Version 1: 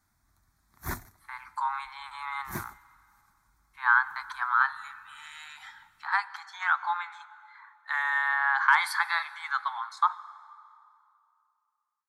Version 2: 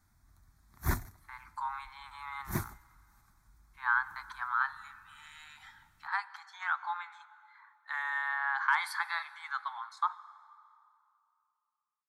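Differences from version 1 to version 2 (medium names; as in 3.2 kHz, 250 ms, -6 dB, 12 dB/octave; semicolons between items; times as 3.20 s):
speech -7.0 dB; master: add bass shelf 170 Hz +8.5 dB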